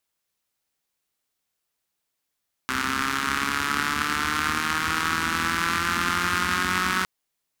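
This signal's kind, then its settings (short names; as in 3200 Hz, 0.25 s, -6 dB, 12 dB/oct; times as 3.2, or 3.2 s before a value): four-cylinder engine model, changing speed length 4.36 s, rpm 3900, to 5600, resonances 85/230/1300 Hz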